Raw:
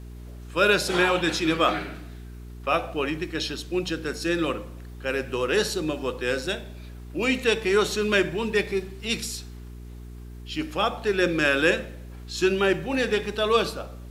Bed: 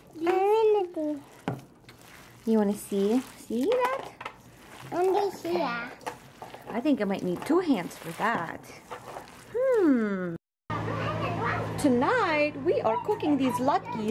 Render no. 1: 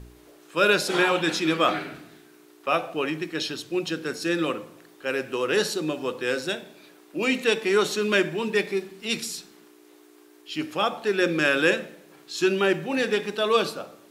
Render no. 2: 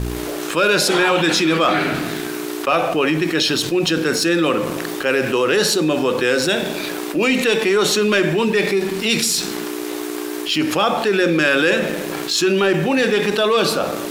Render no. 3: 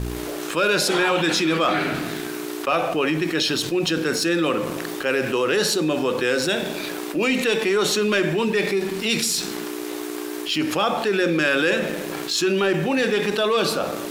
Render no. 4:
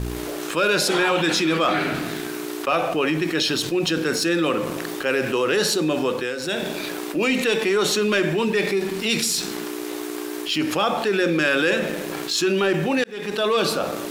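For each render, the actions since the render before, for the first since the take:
de-hum 60 Hz, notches 4
waveshaping leveller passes 1; level flattener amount 70%
trim -4 dB
6.07–6.65 s: dip -9 dB, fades 0.29 s; 13.04–13.47 s: fade in

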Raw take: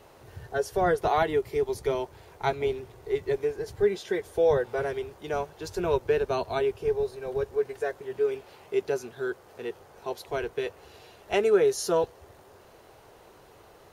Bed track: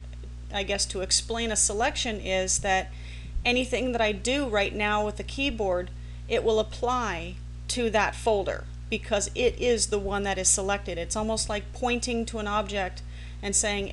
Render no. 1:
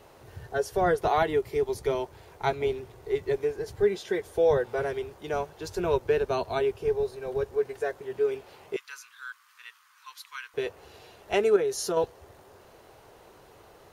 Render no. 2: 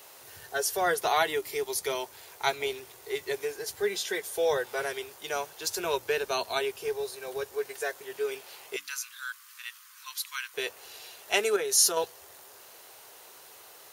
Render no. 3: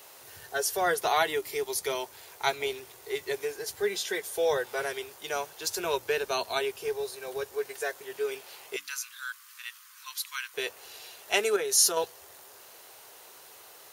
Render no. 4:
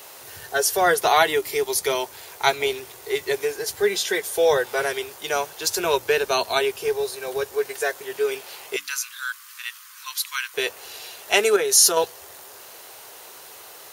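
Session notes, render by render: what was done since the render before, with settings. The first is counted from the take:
8.76–10.54 s: elliptic high-pass 1.1 kHz; 11.56–11.97 s: compression 5:1, threshold -24 dBFS
tilt EQ +4.5 dB/octave; hum notches 60/120/180/240/300 Hz
no audible change
trim +8 dB; peak limiter -3 dBFS, peak gain reduction 2.5 dB

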